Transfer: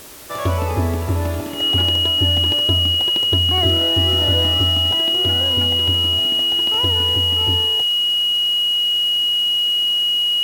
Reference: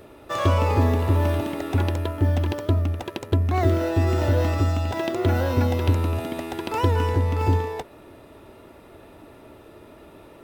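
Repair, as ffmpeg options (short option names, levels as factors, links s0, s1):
-af "bandreject=f=2900:w=30,afwtdn=0.011,asetnsamples=n=441:p=0,asendcmd='4.95 volume volume 3.5dB',volume=1"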